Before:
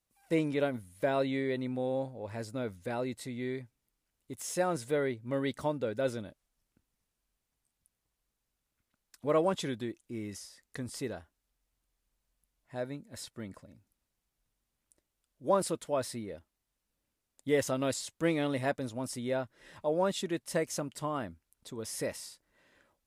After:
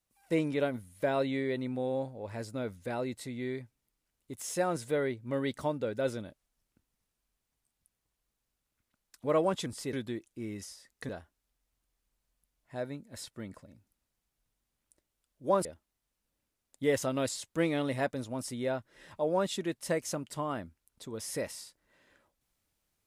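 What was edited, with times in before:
10.82–11.09 move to 9.66
15.65–16.3 cut

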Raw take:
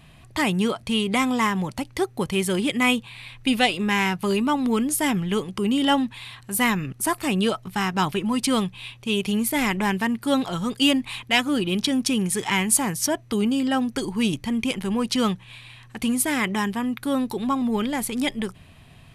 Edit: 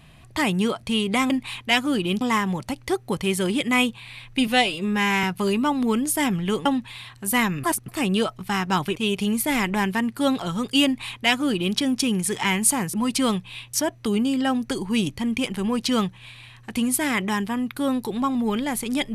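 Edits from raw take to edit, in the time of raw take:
3.56–4.07 stretch 1.5×
5.49–5.92 cut
6.9–7.15 reverse
8.22–9.02 move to 13
10.92–11.83 copy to 1.3

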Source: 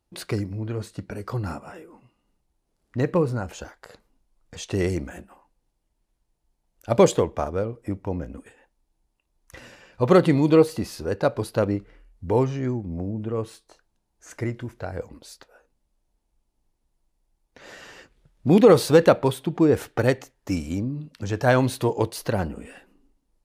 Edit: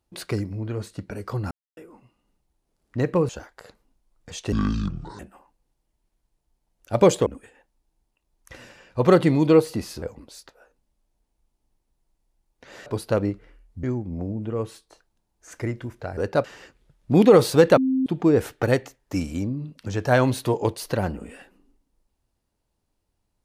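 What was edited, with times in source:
1.51–1.77 mute
3.29–3.54 cut
4.77–5.16 speed 58%
7.23–8.29 cut
11.05–11.32 swap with 14.96–17.8
12.29–12.62 cut
19.13–19.42 bleep 262 Hz -18.5 dBFS

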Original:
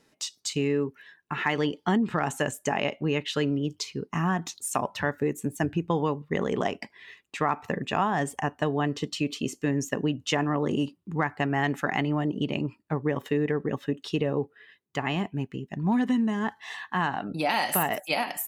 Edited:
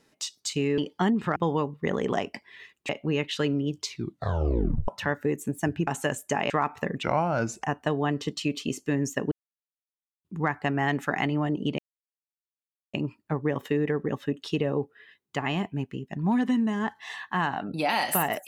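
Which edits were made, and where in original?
0.78–1.65 cut
2.23–2.86 swap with 5.84–7.37
3.84 tape stop 1.01 s
7.9–8.39 speed 81%
10.07–11 mute
12.54 insert silence 1.15 s

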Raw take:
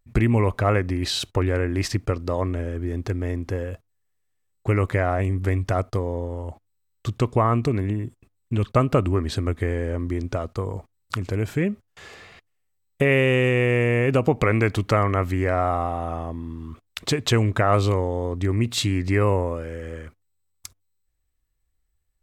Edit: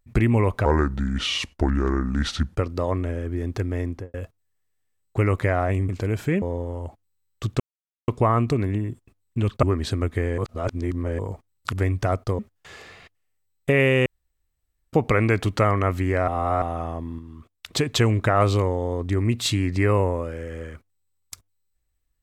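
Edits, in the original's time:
0.65–2.07 speed 74%
3.39–3.64 studio fade out
5.39–6.05 swap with 11.18–11.71
7.23 insert silence 0.48 s
8.78–9.08 cut
9.83–10.64 reverse
13.38–14.25 room tone
15.6–15.94 reverse
16.51–17.05 gain -6 dB

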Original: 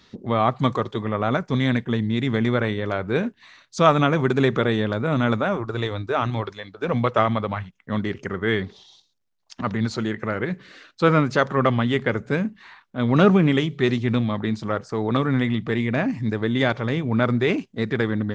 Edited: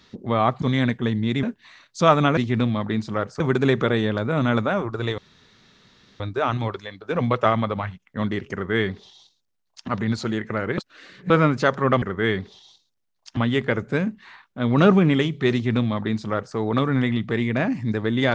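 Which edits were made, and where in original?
0.62–1.49 cut
2.3–3.21 cut
5.93 insert room tone 1.02 s
8.26–9.61 copy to 11.75
10.51–11.03 reverse
13.91–14.94 copy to 4.15

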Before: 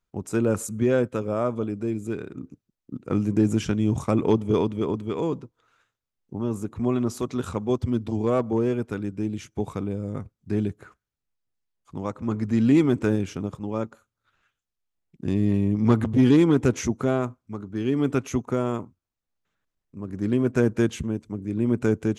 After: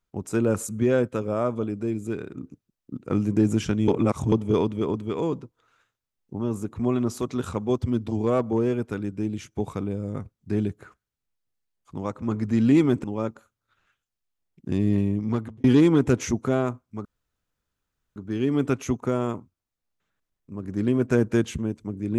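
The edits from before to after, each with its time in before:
3.88–4.32 reverse
13.04–13.6 cut
15.53–16.2 fade out
17.61 insert room tone 1.11 s

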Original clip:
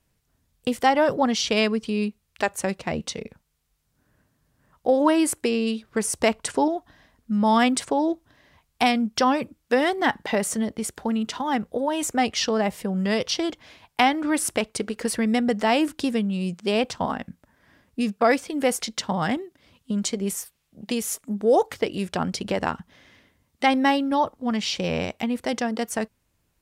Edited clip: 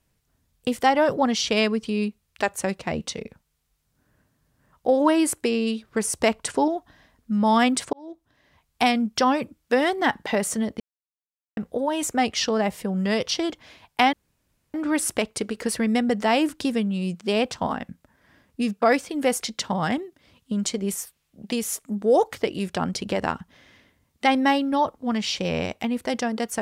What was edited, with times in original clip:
7.93–8.82 fade in
10.8–11.57 mute
14.13 insert room tone 0.61 s

